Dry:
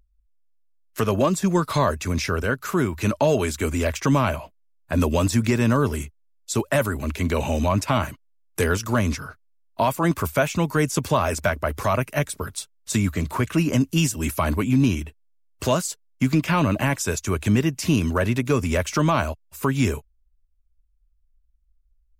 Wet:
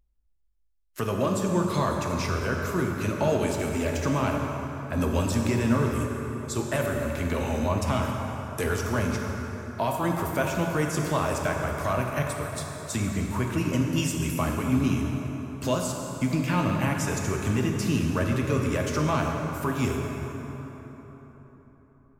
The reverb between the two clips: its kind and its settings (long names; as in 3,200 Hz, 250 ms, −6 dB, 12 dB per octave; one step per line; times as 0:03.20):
dense smooth reverb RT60 4.2 s, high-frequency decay 0.55×, DRR 0.5 dB
level −7 dB